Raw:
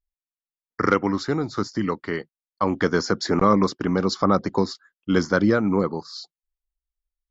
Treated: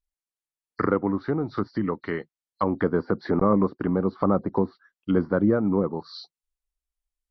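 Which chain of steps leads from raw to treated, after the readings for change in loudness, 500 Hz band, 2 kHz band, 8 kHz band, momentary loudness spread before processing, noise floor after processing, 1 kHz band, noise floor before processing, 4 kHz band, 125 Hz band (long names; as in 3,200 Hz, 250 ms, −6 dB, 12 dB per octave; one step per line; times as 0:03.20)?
−2.5 dB, −1.5 dB, −8.5 dB, can't be measured, 12 LU, below −85 dBFS, −5.0 dB, below −85 dBFS, below −10 dB, −1.5 dB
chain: hearing-aid frequency compression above 3,700 Hz 1.5 to 1
treble cut that deepens with the level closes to 940 Hz, closed at −19 dBFS
level −1.5 dB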